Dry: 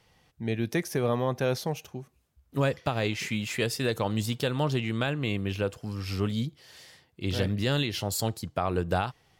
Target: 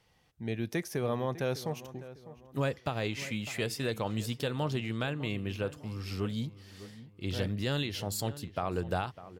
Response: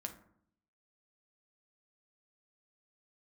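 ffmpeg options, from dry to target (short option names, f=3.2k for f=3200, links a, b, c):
-filter_complex "[0:a]asplit=2[a][b];[b]adelay=602,lowpass=f=2k:p=1,volume=-15dB,asplit=2[c][d];[d]adelay=602,lowpass=f=2k:p=1,volume=0.38,asplit=2[e][f];[f]adelay=602,lowpass=f=2k:p=1,volume=0.38[g];[a][c][e][g]amix=inputs=4:normalize=0,volume=-5dB"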